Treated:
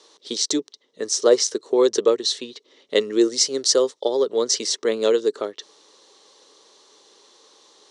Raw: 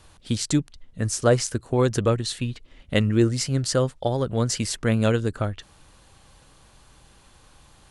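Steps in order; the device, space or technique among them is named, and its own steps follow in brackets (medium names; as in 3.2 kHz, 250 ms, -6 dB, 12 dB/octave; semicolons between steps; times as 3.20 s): 3.01–4.05 s: treble shelf 9.8 kHz +12 dB; phone speaker on a table (cabinet simulation 330–7600 Hz, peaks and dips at 420 Hz +10 dB, 720 Hz -7 dB, 1.5 kHz -9 dB, 2.5 kHz -8 dB, 3.9 kHz +7 dB, 5.7 kHz +8 dB); trim +2.5 dB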